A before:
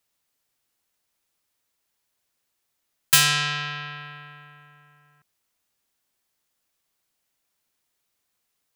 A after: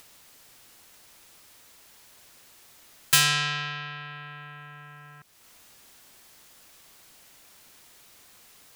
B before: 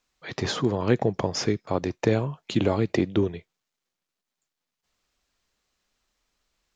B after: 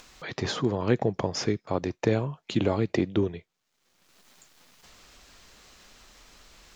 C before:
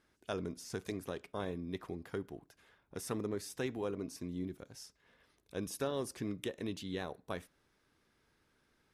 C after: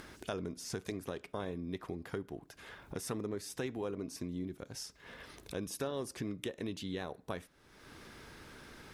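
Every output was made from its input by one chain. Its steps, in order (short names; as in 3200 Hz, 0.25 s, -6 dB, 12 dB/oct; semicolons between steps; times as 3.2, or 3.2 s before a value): high shelf 10000 Hz -3 dB; upward compressor, threshold -31 dBFS; gain -2 dB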